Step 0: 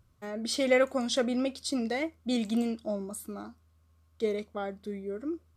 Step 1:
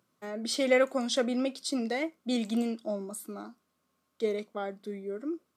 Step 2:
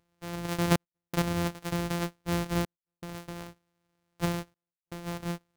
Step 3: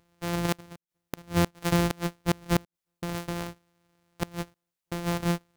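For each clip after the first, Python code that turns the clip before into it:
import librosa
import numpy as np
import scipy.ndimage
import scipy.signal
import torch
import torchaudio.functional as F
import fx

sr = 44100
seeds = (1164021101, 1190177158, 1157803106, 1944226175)

y1 = scipy.signal.sosfilt(scipy.signal.butter(4, 190.0, 'highpass', fs=sr, output='sos'), x)
y2 = np.r_[np.sort(y1[:len(y1) // 256 * 256].reshape(-1, 256), axis=1).ravel(), y1[len(y1) // 256 * 256:]]
y2 = fx.step_gate(y2, sr, bpm=119, pattern='xxxxxx...xxxxxx', floor_db=-60.0, edge_ms=4.5)
y3 = fx.gate_flip(y2, sr, shuts_db=-21.0, range_db=-30)
y3 = y3 * librosa.db_to_amplitude(7.5)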